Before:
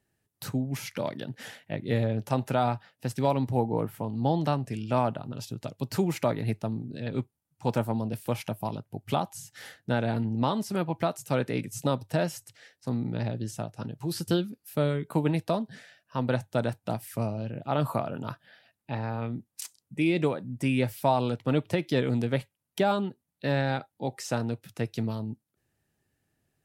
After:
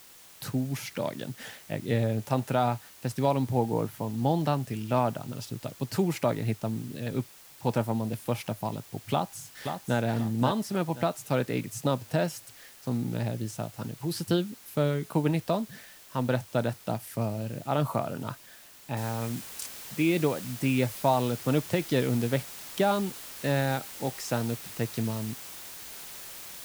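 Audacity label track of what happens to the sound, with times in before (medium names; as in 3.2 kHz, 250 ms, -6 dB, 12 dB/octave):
9.120000	9.980000	echo throw 530 ms, feedback 30%, level -6.5 dB
18.970000	18.970000	noise floor step -52 dB -43 dB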